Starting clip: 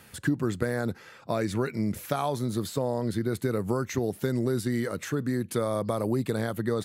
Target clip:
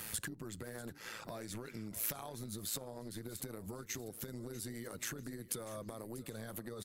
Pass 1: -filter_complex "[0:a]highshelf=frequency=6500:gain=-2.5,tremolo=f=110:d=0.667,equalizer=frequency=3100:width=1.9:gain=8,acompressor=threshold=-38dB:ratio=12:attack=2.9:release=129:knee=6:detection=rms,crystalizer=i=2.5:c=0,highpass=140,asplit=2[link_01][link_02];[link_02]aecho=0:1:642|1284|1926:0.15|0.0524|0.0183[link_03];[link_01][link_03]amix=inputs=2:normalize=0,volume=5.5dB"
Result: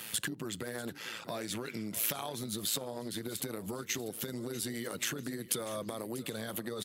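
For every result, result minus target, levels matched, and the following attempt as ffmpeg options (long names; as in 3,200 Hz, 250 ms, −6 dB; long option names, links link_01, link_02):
downward compressor: peak gain reduction −7 dB; 125 Hz band −3.5 dB; 4,000 Hz band +3.5 dB
-filter_complex "[0:a]highshelf=frequency=6500:gain=-2.5,tremolo=f=110:d=0.667,equalizer=frequency=3100:width=1.9:gain=8,acompressor=threshold=-46dB:ratio=12:attack=2.9:release=129:knee=6:detection=rms,crystalizer=i=2.5:c=0,highpass=140,asplit=2[link_01][link_02];[link_02]aecho=0:1:642|1284|1926:0.15|0.0524|0.0183[link_03];[link_01][link_03]amix=inputs=2:normalize=0,volume=5.5dB"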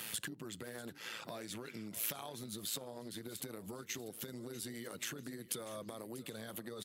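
125 Hz band −4.0 dB; 4,000 Hz band +4.0 dB
-filter_complex "[0:a]highshelf=frequency=6500:gain=-2.5,tremolo=f=110:d=0.667,equalizer=frequency=3100:width=1.9:gain=8,acompressor=threshold=-46dB:ratio=12:attack=2.9:release=129:knee=6:detection=rms,crystalizer=i=2.5:c=0,asplit=2[link_01][link_02];[link_02]aecho=0:1:642|1284|1926:0.15|0.0524|0.0183[link_03];[link_01][link_03]amix=inputs=2:normalize=0,volume=5.5dB"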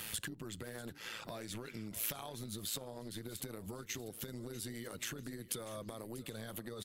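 4,000 Hz band +3.5 dB
-filter_complex "[0:a]highshelf=frequency=6500:gain=-2.5,tremolo=f=110:d=0.667,acompressor=threshold=-46dB:ratio=12:attack=2.9:release=129:knee=6:detection=rms,crystalizer=i=2.5:c=0,asplit=2[link_01][link_02];[link_02]aecho=0:1:642|1284|1926:0.15|0.0524|0.0183[link_03];[link_01][link_03]amix=inputs=2:normalize=0,volume=5.5dB"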